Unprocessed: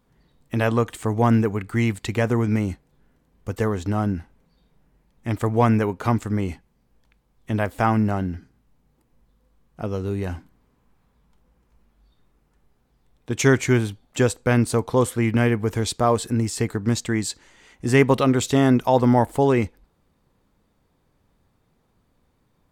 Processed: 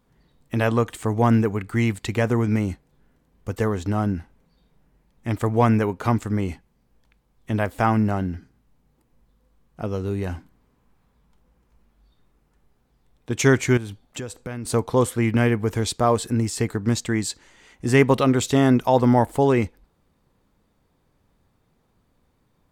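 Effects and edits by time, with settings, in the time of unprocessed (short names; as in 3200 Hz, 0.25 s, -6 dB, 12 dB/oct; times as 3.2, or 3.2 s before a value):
13.77–14.65 compressor, threshold -29 dBFS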